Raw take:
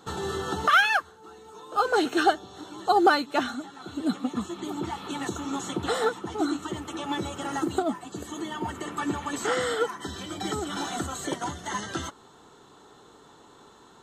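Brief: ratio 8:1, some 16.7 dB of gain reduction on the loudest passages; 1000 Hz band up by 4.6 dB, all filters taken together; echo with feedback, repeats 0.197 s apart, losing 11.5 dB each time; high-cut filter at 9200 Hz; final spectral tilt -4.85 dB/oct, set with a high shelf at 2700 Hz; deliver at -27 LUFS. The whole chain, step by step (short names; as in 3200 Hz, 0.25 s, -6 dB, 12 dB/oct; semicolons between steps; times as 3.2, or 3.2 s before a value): LPF 9200 Hz; bell 1000 Hz +7.5 dB; high shelf 2700 Hz -6.5 dB; compressor 8:1, threshold -29 dBFS; feedback echo 0.197 s, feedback 27%, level -11.5 dB; gain +7 dB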